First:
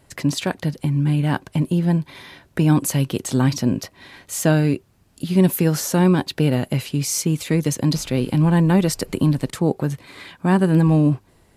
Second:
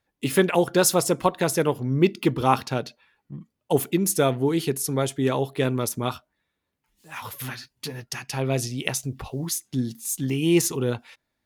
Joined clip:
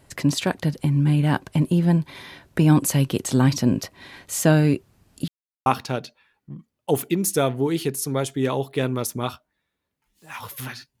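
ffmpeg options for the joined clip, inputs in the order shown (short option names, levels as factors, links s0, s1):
-filter_complex "[0:a]apad=whole_dur=11,atrim=end=11,asplit=2[s0][s1];[s0]atrim=end=5.28,asetpts=PTS-STARTPTS,afade=t=out:st=5.276:d=0.004:c=hsin[s2];[s1]atrim=start=5.28:end=5.66,asetpts=PTS-STARTPTS,volume=0[s3];[1:a]atrim=start=2.48:end=7.82,asetpts=PTS-STARTPTS,afade=t=in:d=0.004:c=hsin[s4];[s2][s3][s4]concat=n=3:v=0:a=1"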